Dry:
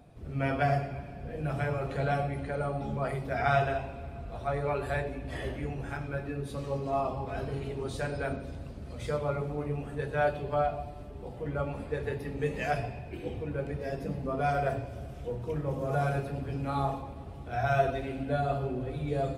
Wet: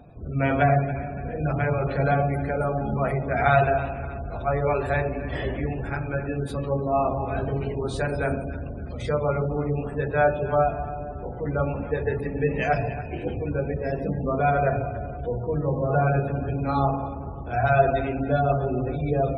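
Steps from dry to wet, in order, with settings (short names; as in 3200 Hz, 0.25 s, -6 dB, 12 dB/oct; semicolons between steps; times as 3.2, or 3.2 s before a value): echo with dull and thin repeats by turns 0.142 s, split 810 Hz, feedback 69%, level -11 dB; spectral gate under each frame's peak -30 dB strong; gain +7 dB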